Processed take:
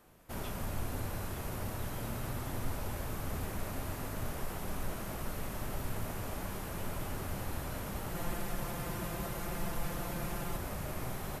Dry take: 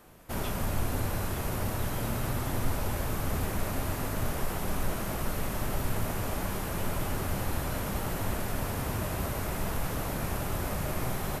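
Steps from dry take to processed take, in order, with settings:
0:08.14–0:10.57: comb filter 5.8 ms, depth 74%
level −7 dB

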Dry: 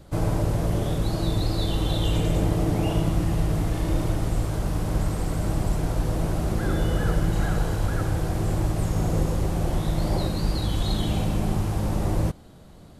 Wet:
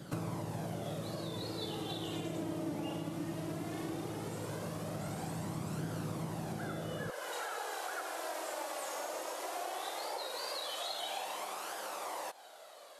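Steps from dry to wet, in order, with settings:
high-pass filter 140 Hz 24 dB per octave, from 0:07.10 560 Hz
downward compressor 6 to 1, threshold −40 dBFS, peak gain reduction 17 dB
flanger 0.17 Hz, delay 0.6 ms, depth 3 ms, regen +44%
level +7 dB

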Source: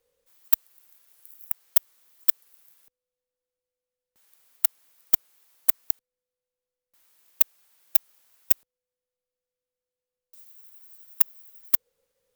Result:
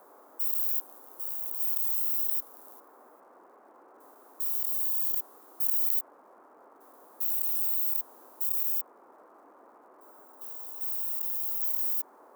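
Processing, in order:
spectrum averaged block by block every 400 ms
surface crackle 420 per second −66 dBFS
in parallel at −3 dB: bit-depth reduction 8 bits, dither none
on the sum: first-order pre-emphasis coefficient 0.8
noise in a band 270–1,200 Hz −59 dBFS
level +3 dB

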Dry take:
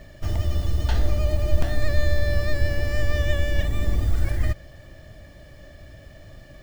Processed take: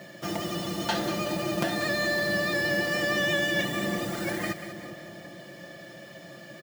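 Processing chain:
high-pass filter 170 Hz 24 dB per octave
comb filter 5.8 ms, depth 64%
echo with a time of its own for lows and highs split 1,000 Hz, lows 418 ms, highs 187 ms, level −11 dB
level +3.5 dB

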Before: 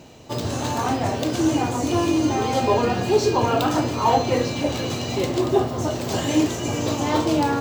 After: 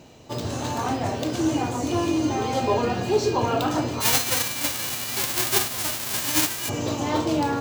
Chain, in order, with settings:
0:04.00–0:06.68: spectral envelope flattened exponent 0.1
level −3 dB

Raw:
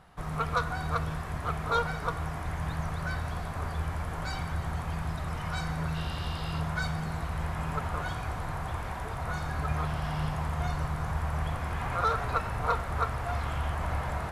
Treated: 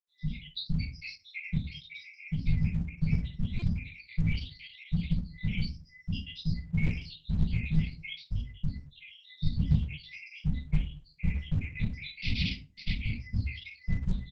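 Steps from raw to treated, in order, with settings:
time-frequency cells dropped at random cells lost 84%
0:00.81–0:01.52: upward compression, threshold −35 dBFS
0:03.07–0:03.51: dynamic equaliser 120 Hz, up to +8 dB, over −51 dBFS, Q 2.1
0:12.22–0:12.93: bit-depth reduction 6 bits, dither none
downsampling to 11,025 Hz
parametric band 71 Hz −4.5 dB 2.6 octaves
convolution reverb RT60 0.30 s, pre-delay 5 ms, DRR −8 dB
brick-wall band-stop 290–2,000 Hz
buffer that repeats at 0:03.59, samples 128, times 10
Opus 12 kbit/s 48,000 Hz

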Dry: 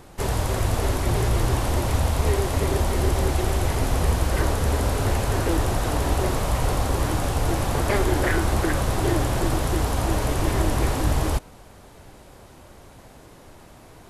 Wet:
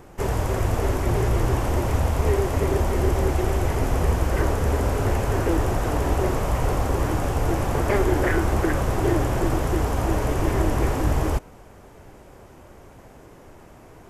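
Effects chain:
graphic EQ with 15 bands 400 Hz +3 dB, 4,000 Hz −9 dB, 10,000 Hz −7 dB

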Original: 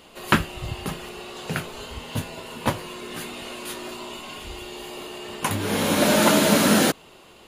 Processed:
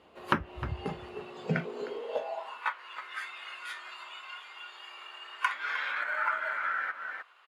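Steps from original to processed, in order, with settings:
treble cut that deepens with the level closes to 2,000 Hz, closed at −15.5 dBFS
in parallel at −9 dB: decimation without filtering 12×
on the sum: high-shelf EQ 4,200 Hz −8.5 dB
on a send: single-tap delay 308 ms −10.5 dB
on the sum: downward compressor 5 to 1, threshold −22 dBFS, peak gain reduction 10.5 dB
bass and treble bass −9 dB, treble −10 dB
high-pass filter sweep 69 Hz → 1,400 Hz, 0:01.08–0:02.69
noise reduction from a noise print of the clip's start 9 dB

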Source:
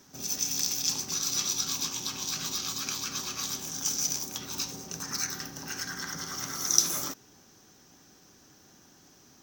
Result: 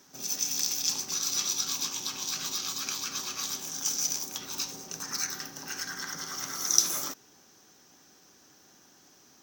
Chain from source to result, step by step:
low-shelf EQ 180 Hz −11.5 dB

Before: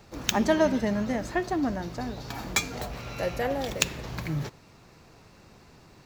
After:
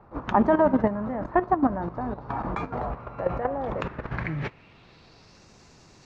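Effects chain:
low-pass filter sweep 1,100 Hz → 6,500 Hz, 0:03.73–0:05.49
output level in coarse steps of 12 dB
level +6.5 dB

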